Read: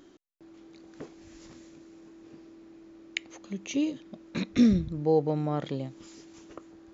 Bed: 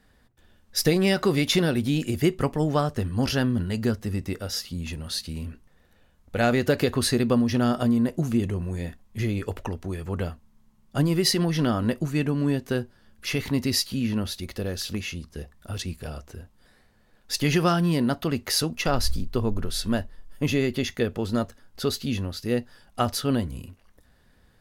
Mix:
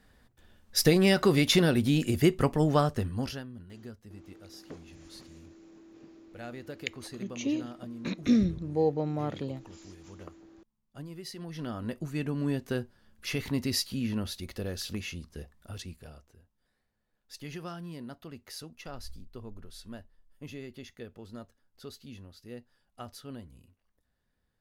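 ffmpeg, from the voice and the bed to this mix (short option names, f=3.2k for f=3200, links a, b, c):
-filter_complex "[0:a]adelay=3700,volume=-2.5dB[a];[1:a]volume=14dB,afade=t=out:st=2.83:d=0.61:silence=0.105925,afade=t=in:st=11.33:d=1.25:silence=0.177828,afade=t=out:st=15.33:d=1.01:silence=0.211349[b];[a][b]amix=inputs=2:normalize=0"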